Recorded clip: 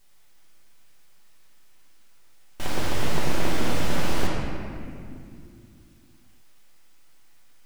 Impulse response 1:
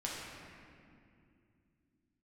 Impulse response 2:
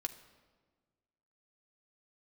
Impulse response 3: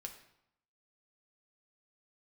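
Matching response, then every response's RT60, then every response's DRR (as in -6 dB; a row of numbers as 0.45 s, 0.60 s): 1; 2.5 s, 1.5 s, 0.80 s; -5.5 dB, 5.5 dB, 3.0 dB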